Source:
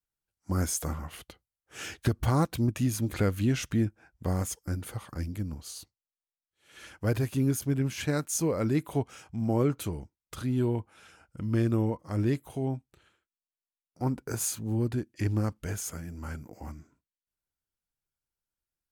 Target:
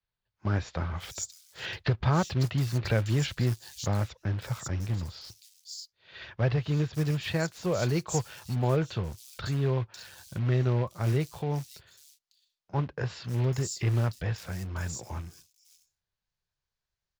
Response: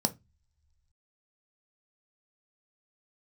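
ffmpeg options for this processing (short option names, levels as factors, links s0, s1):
-filter_complex "[0:a]asplit=2[s0][s1];[s1]acompressor=threshold=0.0178:ratio=6,volume=0.75[s2];[s0][s2]amix=inputs=2:normalize=0,equalizer=f=100:t=o:w=0.67:g=4,equalizer=f=250:t=o:w=0.67:g=-11,equalizer=f=4000:t=o:w=0.67:g=9,asetrate=48510,aresample=44100,acrossover=split=110|4900[s3][s4][s5];[s3]asoftclip=type=hard:threshold=0.0211[s6];[s6][s4][s5]amix=inputs=3:normalize=0,aresample=16000,aresample=44100,acrusher=bits=4:mode=log:mix=0:aa=0.000001,highshelf=f=5400:g=-6,acrossover=split=4300[s7][s8];[s8]adelay=550[s9];[s7][s9]amix=inputs=2:normalize=0"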